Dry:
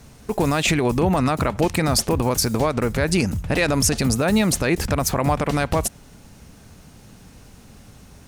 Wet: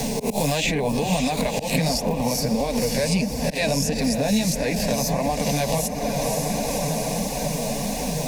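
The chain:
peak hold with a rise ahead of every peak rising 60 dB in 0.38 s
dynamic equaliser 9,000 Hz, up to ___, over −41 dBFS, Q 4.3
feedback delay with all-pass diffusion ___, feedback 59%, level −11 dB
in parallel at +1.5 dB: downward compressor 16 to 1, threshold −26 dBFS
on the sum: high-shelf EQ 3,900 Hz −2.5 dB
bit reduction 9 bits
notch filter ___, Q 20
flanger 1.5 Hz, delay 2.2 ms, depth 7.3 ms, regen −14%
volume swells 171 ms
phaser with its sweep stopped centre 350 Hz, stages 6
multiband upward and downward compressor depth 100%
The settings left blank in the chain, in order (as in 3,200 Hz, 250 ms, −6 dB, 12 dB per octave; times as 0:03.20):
−6 dB, 525 ms, 3,100 Hz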